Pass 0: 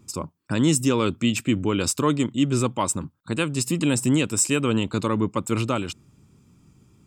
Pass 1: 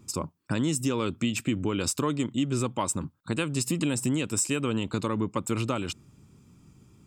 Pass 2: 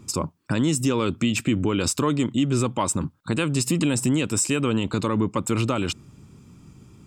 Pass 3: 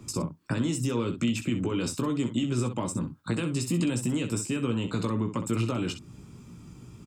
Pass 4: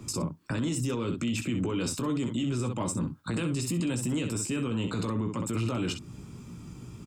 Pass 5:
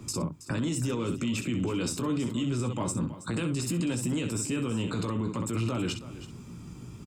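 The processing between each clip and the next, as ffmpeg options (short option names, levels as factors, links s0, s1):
-af "acompressor=threshold=0.0631:ratio=4"
-filter_complex "[0:a]highshelf=f=9600:g=-5.5,asplit=2[s0][s1];[s1]alimiter=limit=0.075:level=0:latency=1:release=13,volume=1.33[s2];[s0][s2]amix=inputs=2:normalize=0"
-filter_complex "[0:a]acrossover=split=100|370[s0][s1][s2];[s0]acompressor=threshold=0.00501:ratio=4[s3];[s1]acompressor=threshold=0.0355:ratio=4[s4];[s2]acompressor=threshold=0.0158:ratio=4[s5];[s3][s4][s5]amix=inputs=3:normalize=0,aecho=1:1:17|64:0.501|0.316"
-af "alimiter=level_in=1.19:limit=0.0631:level=0:latency=1:release=16,volume=0.841,volume=1.41"
-af "aecho=1:1:324:0.188"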